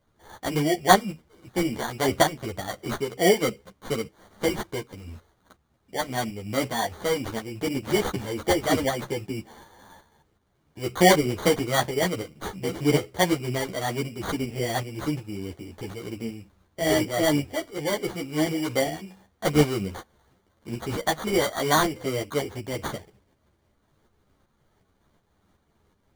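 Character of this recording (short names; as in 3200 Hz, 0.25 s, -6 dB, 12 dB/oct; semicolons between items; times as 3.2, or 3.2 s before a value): tremolo saw up 2.7 Hz, depth 50%; aliases and images of a low sample rate 2600 Hz, jitter 0%; a shimmering, thickened sound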